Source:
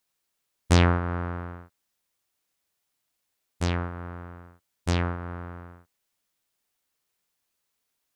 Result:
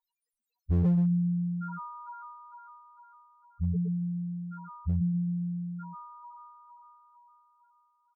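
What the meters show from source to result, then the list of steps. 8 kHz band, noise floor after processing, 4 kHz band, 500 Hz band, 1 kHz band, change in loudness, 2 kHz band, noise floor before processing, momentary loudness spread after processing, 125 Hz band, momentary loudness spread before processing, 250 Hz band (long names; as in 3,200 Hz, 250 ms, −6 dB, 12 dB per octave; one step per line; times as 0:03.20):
below −35 dB, below −85 dBFS, below −35 dB, −13.5 dB, −8.0 dB, −3.5 dB, below −20 dB, −79 dBFS, 22 LU, −1.0 dB, 21 LU, +3.0 dB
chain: in parallel at +2 dB: downward compressor 16 to 1, threshold −33 dBFS, peak gain reduction 19 dB
on the sum: comb filter 4.2 ms, depth 90%
on a send: echo with a time of its own for lows and highs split 710 Hz, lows 132 ms, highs 454 ms, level −4 dB
on the sum: dynamic equaliser 250 Hz, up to −4 dB, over −39 dBFS, Q 2.8
spectral peaks only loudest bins 2
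asymmetric clip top −22.5 dBFS, bottom −20 dBFS
level +1 dB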